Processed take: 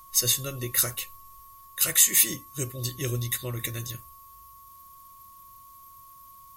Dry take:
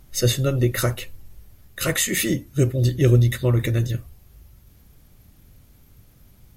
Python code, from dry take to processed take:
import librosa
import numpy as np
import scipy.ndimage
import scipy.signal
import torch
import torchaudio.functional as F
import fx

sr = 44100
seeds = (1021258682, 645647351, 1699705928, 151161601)

y = x + 10.0 ** (-39.0 / 20.0) * np.sin(2.0 * np.pi * 1100.0 * np.arange(len(x)) / sr)
y = F.preemphasis(torch.from_numpy(y), 0.9).numpy()
y = y * librosa.db_to_amplitude(5.0)